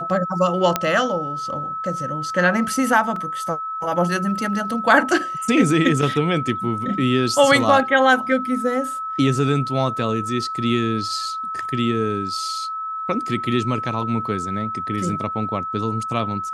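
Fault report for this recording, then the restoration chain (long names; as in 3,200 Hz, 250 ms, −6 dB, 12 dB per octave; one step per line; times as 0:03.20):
whistle 1,300 Hz −25 dBFS
0:00.76: click −3 dBFS
0:03.16: drop-out 2.9 ms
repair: click removal
notch filter 1,300 Hz, Q 30
repair the gap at 0:03.16, 2.9 ms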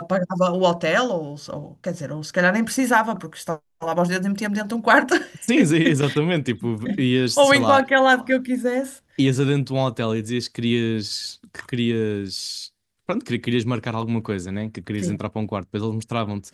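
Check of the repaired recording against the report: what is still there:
none of them is left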